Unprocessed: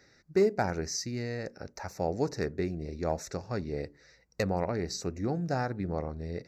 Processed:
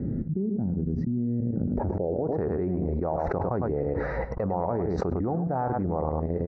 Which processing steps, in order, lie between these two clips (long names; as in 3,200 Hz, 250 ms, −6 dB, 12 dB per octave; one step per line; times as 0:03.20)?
high-shelf EQ 3,200 Hz −11 dB
output level in coarse steps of 18 dB
low-pass filter sweep 220 Hz → 960 Hz, 0:01.66–0:02.43
single-tap delay 104 ms −11 dB
envelope flattener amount 100%
level +3.5 dB